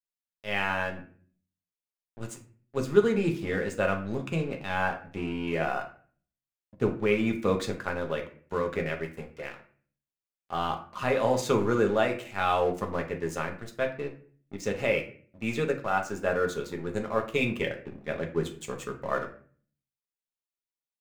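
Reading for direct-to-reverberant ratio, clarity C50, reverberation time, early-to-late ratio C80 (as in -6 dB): 2.5 dB, 11.0 dB, 0.45 s, 15.5 dB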